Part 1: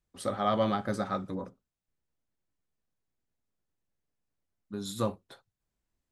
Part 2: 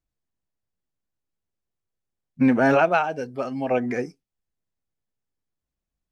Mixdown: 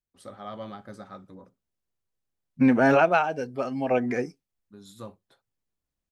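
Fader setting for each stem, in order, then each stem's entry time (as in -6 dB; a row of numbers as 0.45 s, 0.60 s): -11.0 dB, -1.0 dB; 0.00 s, 0.20 s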